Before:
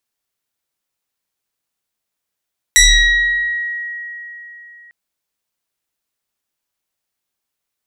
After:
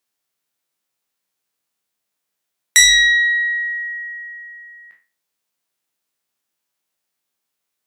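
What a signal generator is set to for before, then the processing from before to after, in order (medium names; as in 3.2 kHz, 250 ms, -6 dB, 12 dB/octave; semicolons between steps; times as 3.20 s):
FM tone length 2.15 s, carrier 1.9 kHz, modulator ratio 1.02, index 4, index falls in 1.23 s exponential, decay 3.59 s, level -4.5 dB
spectral sustain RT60 0.35 s; high-pass 120 Hz 12 dB/octave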